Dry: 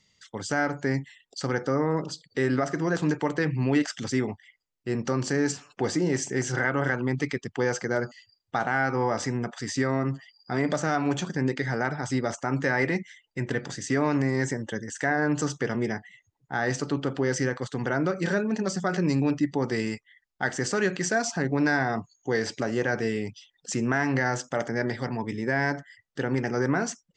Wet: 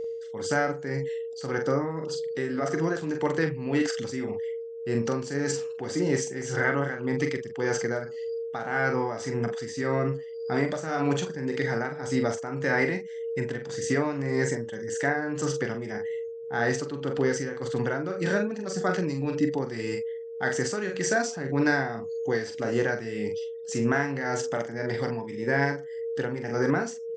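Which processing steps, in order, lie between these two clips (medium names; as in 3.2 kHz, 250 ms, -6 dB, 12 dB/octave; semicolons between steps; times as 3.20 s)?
whistle 460 Hz -30 dBFS; doubling 43 ms -6 dB; tremolo 1.8 Hz, depth 62%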